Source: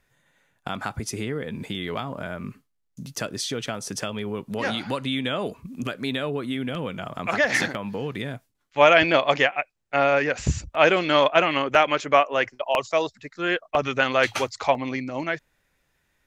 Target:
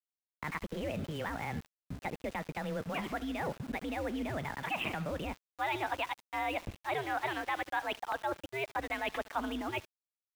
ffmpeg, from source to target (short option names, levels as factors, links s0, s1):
-af "agate=range=0.447:threshold=0.00631:ratio=16:detection=peak,adynamicequalizer=threshold=0.00282:dfrequency=100:dqfactor=3.1:tfrequency=100:tqfactor=3.1:attack=5:release=100:ratio=0.375:range=2:mode=cutabove:tftype=bell,areverse,acompressor=threshold=0.0224:ratio=4,areverse,asetrate=69237,aresample=44100,highpass=f=210:t=q:w=0.5412,highpass=f=210:t=q:w=1.307,lowpass=f=3100:t=q:w=0.5176,lowpass=f=3100:t=q:w=0.7071,lowpass=f=3100:t=q:w=1.932,afreqshift=-150,aecho=1:1:72|144|216|288:0.133|0.064|0.0307|0.0147,aeval=exprs='val(0)*gte(abs(val(0)),0.00562)':c=same"